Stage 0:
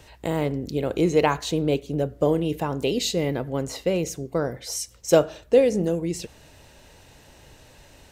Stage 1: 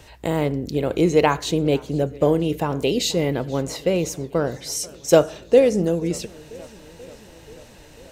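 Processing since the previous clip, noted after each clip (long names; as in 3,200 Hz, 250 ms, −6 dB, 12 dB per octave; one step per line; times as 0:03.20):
feedback echo with a swinging delay time 487 ms, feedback 70%, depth 159 cents, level −23 dB
level +3 dB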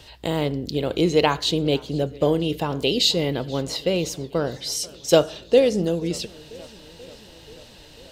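flat-topped bell 3,800 Hz +8.5 dB 1 octave
level −2 dB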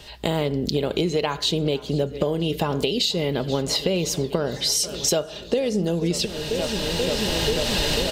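camcorder AGC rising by 14 dB per second
comb filter 4.9 ms, depth 31%
downward compressor 4 to 1, threshold −23 dBFS, peak gain reduction 11.5 dB
level +2.5 dB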